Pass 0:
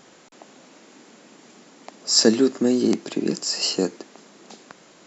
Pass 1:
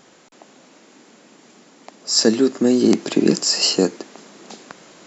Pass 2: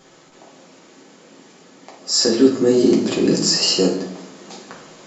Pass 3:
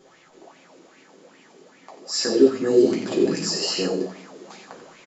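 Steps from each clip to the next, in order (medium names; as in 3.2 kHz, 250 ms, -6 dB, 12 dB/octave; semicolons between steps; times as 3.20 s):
gain riding 0.5 s; trim +4 dB
peak limiter -8 dBFS, peak gain reduction 6.5 dB; reverberation RT60 0.75 s, pre-delay 5 ms, DRR -3 dB; trim -3 dB
on a send: delay 90 ms -8.5 dB; on the sum: sweeping bell 2.5 Hz 350–2500 Hz +13 dB; trim -9 dB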